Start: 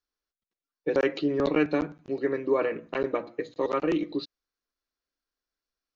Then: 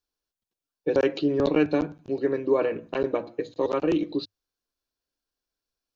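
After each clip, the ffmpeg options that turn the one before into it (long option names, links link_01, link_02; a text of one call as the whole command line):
ffmpeg -i in.wav -af "equalizer=frequency=100:width_type=o:width=0.33:gain=9,equalizer=frequency=1250:width_type=o:width=0.33:gain=-6,equalizer=frequency=2000:width_type=o:width=0.33:gain=-9,volume=2.5dB" out.wav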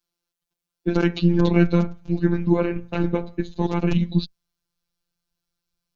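ffmpeg -i in.wav -af "afreqshift=-100,asubboost=boost=4.5:cutoff=140,afftfilt=real='hypot(re,im)*cos(PI*b)':imag='0':win_size=1024:overlap=0.75,volume=7.5dB" out.wav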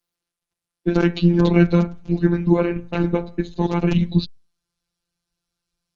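ffmpeg -i in.wav -af "volume=2.5dB" -ar 48000 -c:a libopus -b:a 20k out.opus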